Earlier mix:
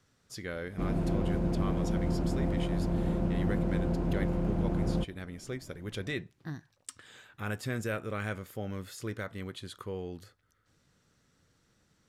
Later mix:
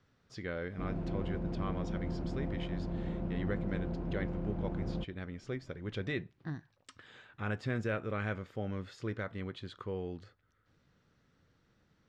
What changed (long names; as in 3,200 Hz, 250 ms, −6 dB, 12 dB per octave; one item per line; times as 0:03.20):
background −7.0 dB
master: add high-frequency loss of the air 170 metres